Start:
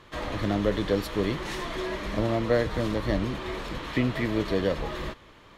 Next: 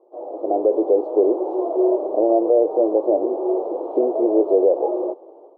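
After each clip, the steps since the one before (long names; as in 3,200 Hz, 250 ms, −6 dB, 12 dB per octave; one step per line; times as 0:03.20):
elliptic band-pass filter 350–780 Hz, stop band 50 dB
automatic gain control gain up to 12.5 dB
brickwall limiter −11.5 dBFS, peak gain reduction 8 dB
level +4 dB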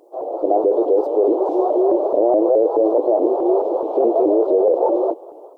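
bass and treble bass −13 dB, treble +14 dB
in parallel at −1 dB: compressor whose output falls as the input rises −21 dBFS, ratio −0.5
on the sum: pitch modulation by a square or saw wave saw up 4.7 Hz, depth 160 cents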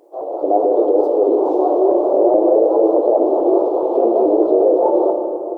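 rectangular room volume 120 cubic metres, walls hard, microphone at 0.3 metres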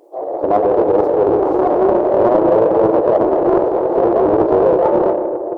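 in parallel at −10 dB: soft clipping −17.5 dBFS, distortion −8 dB
on the sum: highs frequency-modulated by the lows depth 0.36 ms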